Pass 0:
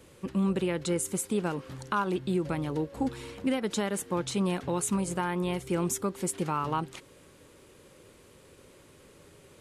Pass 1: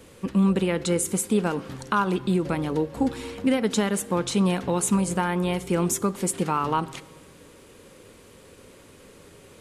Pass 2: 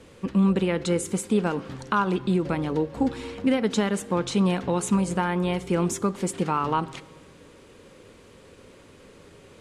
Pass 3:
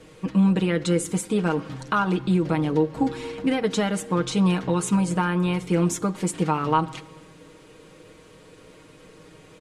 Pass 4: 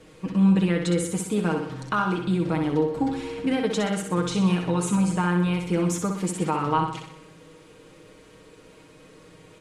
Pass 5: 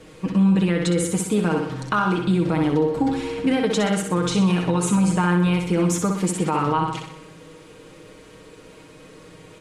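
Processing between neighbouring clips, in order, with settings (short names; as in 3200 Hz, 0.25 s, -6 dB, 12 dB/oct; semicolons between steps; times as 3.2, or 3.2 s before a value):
reverb RT60 1.1 s, pre-delay 4 ms, DRR 13 dB; gain +5.5 dB
air absorption 52 m
comb 6.4 ms, depth 67%
flutter echo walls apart 10.7 m, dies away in 0.63 s; gain -2.5 dB
limiter -16.5 dBFS, peak gain reduction 5.5 dB; gain +5 dB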